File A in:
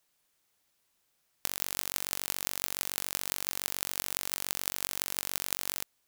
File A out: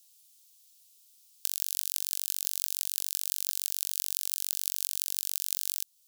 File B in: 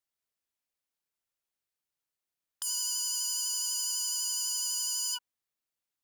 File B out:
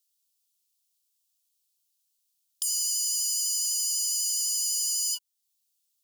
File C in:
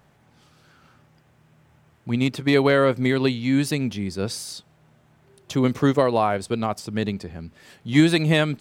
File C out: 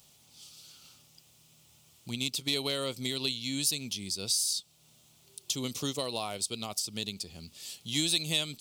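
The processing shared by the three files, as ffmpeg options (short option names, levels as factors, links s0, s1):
-af "bandreject=f=1600:w=8.3,aexciter=amount=10.5:drive=5.8:freq=2800,acompressor=threshold=0.0282:ratio=1.5,volume=0.316"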